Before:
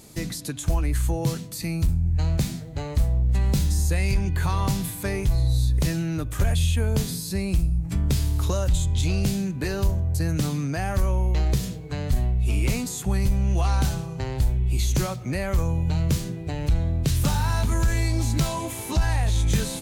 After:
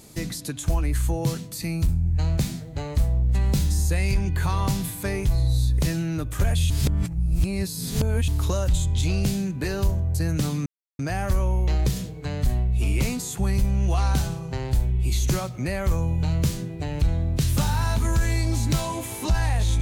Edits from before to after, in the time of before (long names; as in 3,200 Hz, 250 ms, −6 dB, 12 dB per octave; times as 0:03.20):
0:06.70–0:08.28: reverse
0:10.66: splice in silence 0.33 s